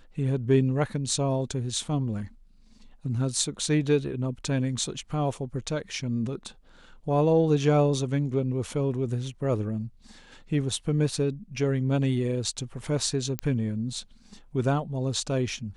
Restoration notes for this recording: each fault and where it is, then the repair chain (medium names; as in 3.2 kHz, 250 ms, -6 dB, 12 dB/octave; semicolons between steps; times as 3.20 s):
13.39 s: pop -13 dBFS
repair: de-click